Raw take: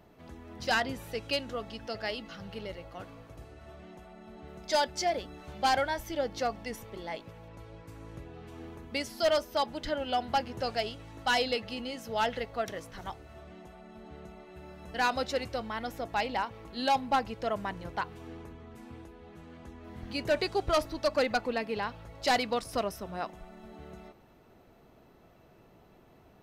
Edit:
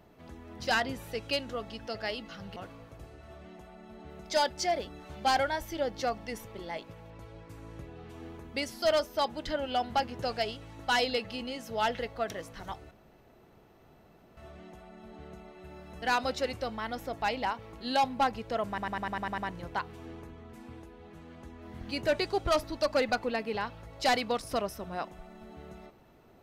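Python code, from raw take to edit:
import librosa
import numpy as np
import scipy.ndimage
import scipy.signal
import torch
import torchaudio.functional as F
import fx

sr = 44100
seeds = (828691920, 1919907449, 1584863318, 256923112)

y = fx.edit(x, sr, fx.cut(start_s=2.56, length_s=0.38),
    fx.insert_room_tone(at_s=13.29, length_s=1.46),
    fx.stutter(start_s=17.6, slice_s=0.1, count=8), tone=tone)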